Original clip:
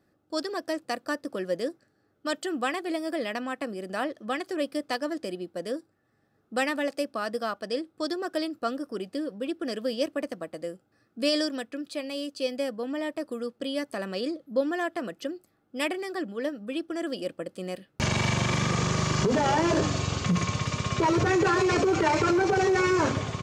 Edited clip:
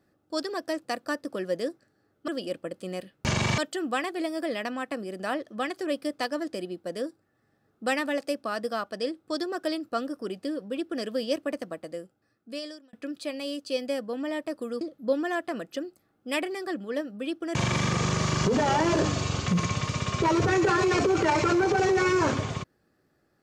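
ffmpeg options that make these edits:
-filter_complex "[0:a]asplit=6[a][b][c][d][e][f];[a]atrim=end=2.282[g];[b]atrim=start=17.028:end=18.332[h];[c]atrim=start=2.278:end=11.63,asetpts=PTS-STARTPTS,afade=t=out:st=8.132:d=1.22[i];[d]atrim=start=11.63:end=13.512,asetpts=PTS-STARTPTS,afade=t=in:d=0.004:c=hsin[j];[e]atrim=start=14.288:end=17.032[k];[f]atrim=start=18.328[l];[g][h]acrossfade=d=0.004:c1=hsin:c2=hsin[m];[i][j]concat=n=2:v=0:a=1[n];[m][n]acrossfade=d=0.004:c1=hsin:c2=hsin[o];[o][k]acrossfade=d=0.004:c1=hsin:c2=hsin[p];[p][l]acrossfade=d=0.004:c1=hsin:c2=hsin"

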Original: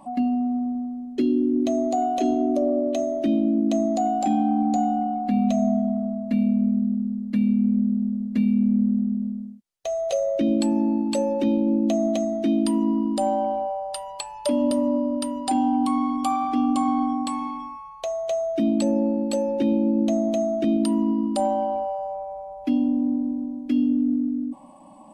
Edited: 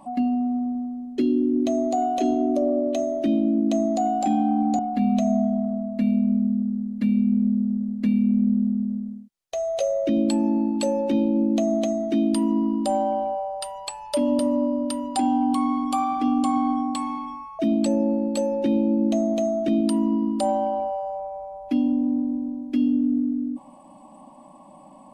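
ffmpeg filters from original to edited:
-filter_complex "[0:a]asplit=3[a][b][c];[a]atrim=end=4.792[d];[b]atrim=start=5.108:end=17.912[e];[c]atrim=start=18.548[f];[d][e]acrossfade=d=0.004:c1=hsin:c2=hsin[g];[g][f]acrossfade=d=0.004:c1=hsin:c2=hsin"

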